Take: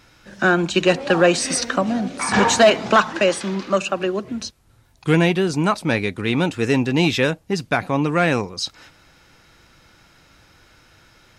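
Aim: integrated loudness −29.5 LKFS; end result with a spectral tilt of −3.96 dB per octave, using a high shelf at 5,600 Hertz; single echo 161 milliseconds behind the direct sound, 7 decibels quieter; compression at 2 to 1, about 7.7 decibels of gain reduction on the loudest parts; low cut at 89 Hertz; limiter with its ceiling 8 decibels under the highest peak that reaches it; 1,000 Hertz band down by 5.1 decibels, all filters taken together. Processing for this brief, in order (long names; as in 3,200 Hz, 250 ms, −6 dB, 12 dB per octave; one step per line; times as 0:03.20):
high-pass filter 89 Hz
parametric band 1,000 Hz −7.5 dB
high-shelf EQ 5,600 Hz +5 dB
downward compressor 2 to 1, threshold −26 dBFS
brickwall limiter −20 dBFS
single-tap delay 161 ms −7 dB
level −0.5 dB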